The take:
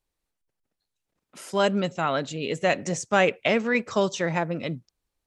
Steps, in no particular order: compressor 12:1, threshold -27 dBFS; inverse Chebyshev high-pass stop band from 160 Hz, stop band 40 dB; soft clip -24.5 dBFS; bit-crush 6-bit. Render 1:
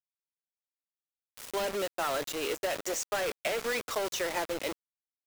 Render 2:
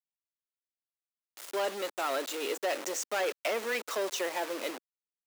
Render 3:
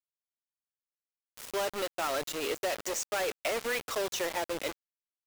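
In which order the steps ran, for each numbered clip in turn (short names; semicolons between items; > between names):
inverse Chebyshev high-pass > soft clip > compressor > bit-crush; bit-crush > soft clip > compressor > inverse Chebyshev high-pass; soft clip > inverse Chebyshev high-pass > compressor > bit-crush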